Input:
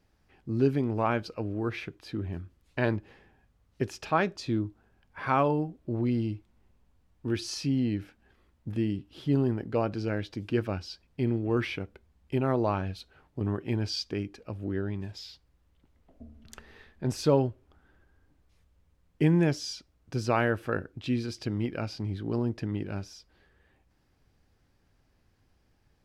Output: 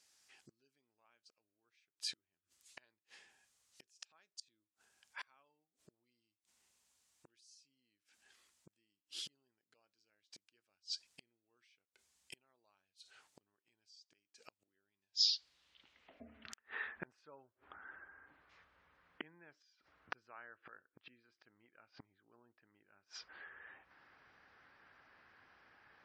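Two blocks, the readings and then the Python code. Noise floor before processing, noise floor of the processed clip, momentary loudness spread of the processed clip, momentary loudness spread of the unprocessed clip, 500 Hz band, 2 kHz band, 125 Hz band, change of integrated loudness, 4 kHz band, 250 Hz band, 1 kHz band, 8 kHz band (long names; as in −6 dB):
−69 dBFS, below −85 dBFS, 19 LU, 13 LU, −34.5 dB, −14.0 dB, below −40 dB, −12.5 dB, −2.0 dB, −36.5 dB, −26.0 dB, −7.5 dB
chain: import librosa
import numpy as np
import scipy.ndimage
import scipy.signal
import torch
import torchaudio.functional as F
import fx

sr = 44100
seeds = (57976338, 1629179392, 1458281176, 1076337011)

y = fx.gate_flip(x, sr, shuts_db=-30.0, range_db=-38)
y = fx.filter_sweep_bandpass(y, sr, from_hz=7600.0, to_hz=1500.0, start_s=14.83, end_s=16.66, q=1.7)
y = fx.spec_gate(y, sr, threshold_db=-30, keep='strong')
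y = y * 10.0 ** (15.5 / 20.0)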